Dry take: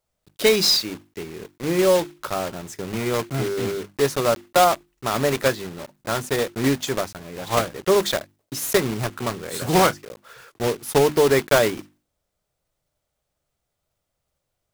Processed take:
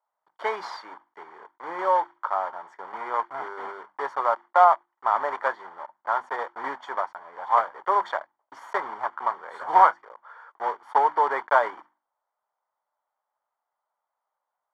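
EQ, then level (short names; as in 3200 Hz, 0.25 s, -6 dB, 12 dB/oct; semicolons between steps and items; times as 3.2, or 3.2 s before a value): polynomial smoothing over 41 samples; resonant high-pass 920 Hz, resonance Q 4.9; air absorption 51 m; -3.5 dB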